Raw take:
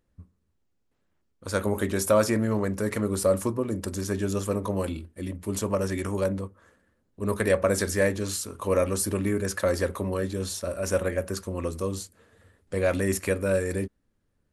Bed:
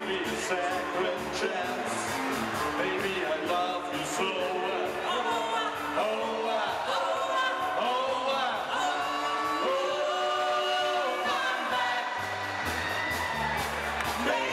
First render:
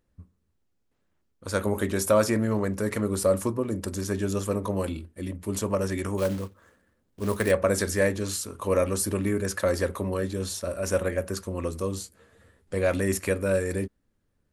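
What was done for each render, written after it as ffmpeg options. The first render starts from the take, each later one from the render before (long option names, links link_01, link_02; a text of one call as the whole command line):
ffmpeg -i in.wav -filter_complex "[0:a]asplit=3[link_01][link_02][link_03];[link_01]afade=type=out:start_time=6.17:duration=0.02[link_04];[link_02]acrusher=bits=4:mode=log:mix=0:aa=0.000001,afade=type=in:start_time=6.17:duration=0.02,afade=type=out:start_time=7.5:duration=0.02[link_05];[link_03]afade=type=in:start_time=7.5:duration=0.02[link_06];[link_04][link_05][link_06]amix=inputs=3:normalize=0,asettb=1/sr,asplit=3[link_07][link_08][link_09];[link_07]atrim=end=12.024[link_10];[link_08]atrim=start=12.02:end=12.74,asetpts=PTS-STARTPTS,afade=type=in:duration=0.004:curve=qsin,afade=type=out:start_time=0.716:duration=0.004:curve=qsin,asplit=2[link_11][link_12];[link_12]adelay=15,volume=-6dB[link_13];[link_11][link_13]amix=inputs=2:normalize=0,atrim=end_sample=31752[link_14];[link_09]atrim=start=12.736[link_15];[link_10][link_14]acrossfade=duration=0.004:curve1=hsin:curve2=qsin[link_16];[link_16][link_15]acrossfade=duration=0.004:curve1=qsin:curve2=hsin" out.wav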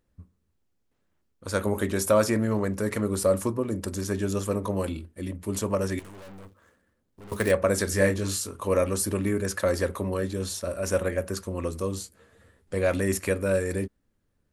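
ffmpeg -i in.wav -filter_complex "[0:a]asettb=1/sr,asplit=3[link_01][link_02][link_03];[link_01]atrim=end=5.994[link_04];[link_02]atrim=start=5.99:end=7.32,asetpts=PTS-STARTPTS,afade=type=in:duration=0.004:curve=qsin,afade=type=out:start_time=1.326:duration=0.004:curve=qsin,aeval=exprs='(tanh(158*val(0)+0.55)-tanh(0.55))/158':channel_layout=same[link_05];[link_03]atrim=start=7.316[link_06];[link_04][link_05]acrossfade=duration=0.004:curve1=hsin:curve2=qsin[link_07];[link_07][link_06]acrossfade=duration=0.004:curve1=qsin:curve2=hsin,asettb=1/sr,asplit=3[link_08][link_09][link_10];[link_08]atrim=end=7.894[link_11];[link_09]atrim=start=7.89:end=8.5,asetpts=PTS-STARTPTS,afade=type=in:duration=0.004:curve=qsin,afade=type=out:start_time=0.606:duration=0.004:curve=qsin,asplit=2[link_12][link_13];[link_13]adelay=21,volume=-5dB[link_14];[link_12][link_14]amix=inputs=2:normalize=0,atrim=end_sample=26901[link_15];[link_10]atrim=start=8.496[link_16];[link_11][link_15]acrossfade=duration=0.004:curve1=hsin:curve2=qsin[link_17];[link_17][link_16]acrossfade=duration=0.004:curve1=qsin:curve2=hsin" out.wav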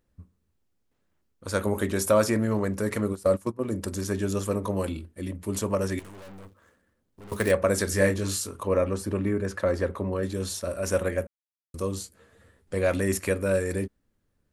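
ffmpeg -i in.wav -filter_complex "[0:a]asplit=3[link_01][link_02][link_03];[link_01]afade=type=out:start_time=3.12:duration=0.02[link_04];[link_02]agate=range=-17dB:threshold=-26dB:ratio=16:release=100:detection=peak,afade=type=in:start_time=3.12:duration=0.02,afade=type=out:start_time=3.62:duration=0.02[link_05];[link_03]afade=type=in:start_time=3.62:duration=0.02[link_06];[link_04][link_05][link_06]amix=inputs=3:normalize=0,asettb=1/sr,asplit=3[link_07][link_08][link_09];[link_07]atrim=end=8.634[link_10];[link_08]atrim=start=8.63:end=10.23,asetpts=PTS-STARTPTS,afade=type=in:duration=0.004:curve=qsin,afade=type=out:start_time=1.596:duration=0.004:curve=qsin,lowpass=frequency=1900:poles=1[link_11];[link_09]atrim=start=10.226[link_12];[link_10][link_11]acrossfade=duration=0.004:curve1=hsin:curve2=qsin[link_13];[link_13][link_12]acrossfade=duration=0.004:curve1=qsin:curve2=hsin,asplit=3[link_14][link_15][link_16];[link_14]atrim=end=11.27,asetpts=PTS-STARTPTS,afade=type=out:start_time=11.266:duration=0.004:curve=hsin[link_17];[link_15]atrim=start=11.27:end=11.74,asetpts=PTS-STARTPTS,volume=0[link_18];[link_16]atrim=start=11.74,asetpts=PTS-STARTPTS,afade=type=in:duration=0.004:curve=hsin[link_19];[link_17][link_18][link_19]concat=n=3:v=0:a=1" out.wav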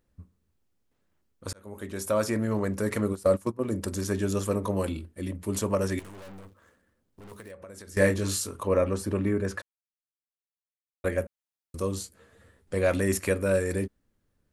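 ffmpeg -i in.wav -filter_complex "[0:a]asettb=1/sr,asplit=3[link_01][link_02][link_03];[link_01]atrim=end=6.404[link_04];[link_02]atrim=start=6.4:end=7.97,asetpts=PTS-STARTPTS,afade=type=in:duration=0.004:curve=qsin,afade=type=out:start_time=1.566:duration=0.004:curve=qsin,acompressor=threshold=-43dB:ratio=6:attack=3.2:release=140:knee=1:detection=peak[link_05];[link_03]atrim=start=7.966[link_06];[link_04][link_05]acrossfade=duration=0.004:curve1=hsin:curve2=qsin[link_07];[link_07][link_06]acrossfade=duration=0.004:curve1=qsin:curve2=hsin,asplit=4[link_08][link_09][link_10][link_11];[link_08]atrim=end=1.53,asetpts=PTS-STARTPTS,afade=type=out:start_time=1.526:duration=0.004:curve=hsin[link_12];[link_09]atrim=start=1.53:end=9.62,asetpts=PTS-STARTPTS,afade=type=in:duration=1.68:curve=qsin,afade=type=out:start_time=8.086:duration=0.004:curve=hsin[link_13];[link_10]atrim=start=9.62:end=11.04,asetpts=PTS-STARTPTS,volume=0[link_14];[link_11]atrim=start=11.04,asetpts=PTS-STARTPTS,afade=type=in:duration=0.004:curve=hsin[link_15];[link_12][link_13][link_14][link_15]concat=n=4:v=0:a=1" out.wav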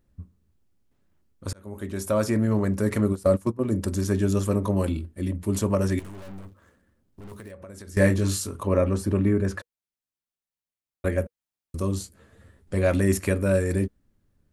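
ffmpeg -i in.wav -af "lowshelf=frequency=350:gain=7.5,bandreject=frequency=480:width=12" out.wav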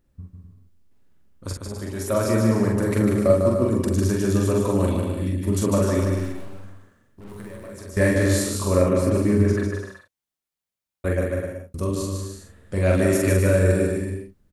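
ffmpeg -i in.wav -filter_complex "[0:a]asplit=2[link_01][link_02];[link_02]adelay=44,volume=-2.5dB[link_03];[link_01][link_03]amix=inputs=2:normalize=0,aecho=1:1:150|255|328.5|380|416:0.631|0.398|0.251|0.158|0.1" out.wav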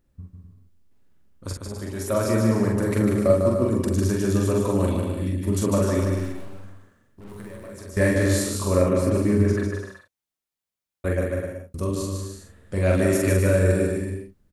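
ffmpeg -i in.wav -af "volume=-1dB" out.wav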